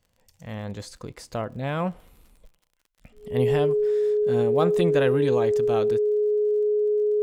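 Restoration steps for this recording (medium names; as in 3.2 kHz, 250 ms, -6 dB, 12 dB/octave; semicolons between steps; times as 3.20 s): de-click; band-stop 420 Hz, Q 30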